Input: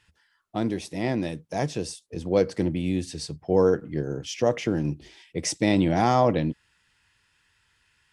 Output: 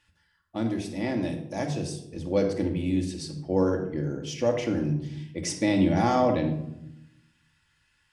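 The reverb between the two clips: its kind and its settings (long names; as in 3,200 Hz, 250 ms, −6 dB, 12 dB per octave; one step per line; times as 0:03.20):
rectangular room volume 2,100 cubic metres, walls furnished, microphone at 2.4 metres
level −4.5 dB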